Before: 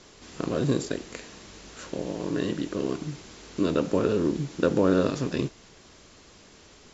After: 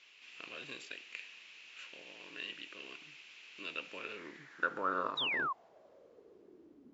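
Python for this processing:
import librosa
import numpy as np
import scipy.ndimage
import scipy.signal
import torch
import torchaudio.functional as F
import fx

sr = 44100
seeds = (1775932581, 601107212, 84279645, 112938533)

y = fx.filter_sweep_bandpass(x, sr, from_hz=2600.0, to_hz=270.0, start_s=3.97, end_s=6.87, q=5.6)
y = fx.spec_paint(y, sr, seeds[0], shape='fall', start_s=5.17, length_s=0.36, low_hz=1000.0, high_hz=4000.0, level_db=-39.0)
y = F.gain(torch.from_numpy(y), 4.5).numpy()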